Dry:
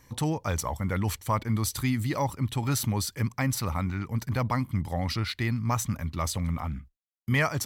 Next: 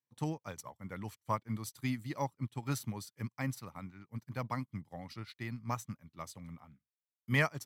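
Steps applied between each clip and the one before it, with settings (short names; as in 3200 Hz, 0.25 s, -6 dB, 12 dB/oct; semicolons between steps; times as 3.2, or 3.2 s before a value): HPF 110 Hz 24 dB/oct; upward expander 2.5:1, over -46 dBFS; gain -3 dB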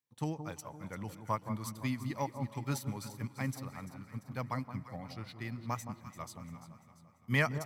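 echo with dull and thin repeats by turns 0.171 s, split 1100 Hz, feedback 68%, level -9 dB; on a send at -20 dB: reverb RT60 4.4 s, pre-delay 0.108 s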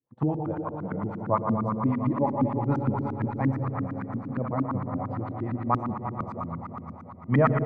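split-band echo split 1400 Hz, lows 0.349 s, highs 0.605 s, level -9.5 dB; spring tank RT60 3.2 s, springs 60 ms, chirp 50 ms, DRR 3.5 dB; LFO low-pass saw up 8.7 Hz 240–1500 Hz; gain +7.5 dB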